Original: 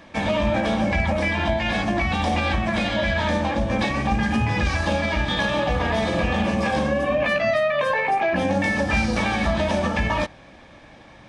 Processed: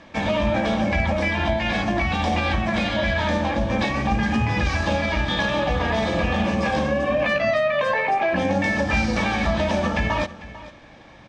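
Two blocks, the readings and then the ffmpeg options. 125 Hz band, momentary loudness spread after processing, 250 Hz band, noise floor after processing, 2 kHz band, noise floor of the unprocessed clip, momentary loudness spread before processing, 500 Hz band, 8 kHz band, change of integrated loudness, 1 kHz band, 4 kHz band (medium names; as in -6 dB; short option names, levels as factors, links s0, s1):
0.0 dB, 2 LU, 0.0 dB, -46 dBFS, 0.0 dB, -47 dBFS, 2 LU, 0.0 dB, -1.0 dB, 0.0 dB, 0.0 dB, 0.0 dB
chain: -filter_complex "[0:a]lowpass=f=7700:w=0.5412,lowpass=f=7700:w=1.3066,asplit=2[s0][s1];[s1]aecho=0:1:447:0.141[s2];[s0][s2]amix=inputs=2:normalize=0"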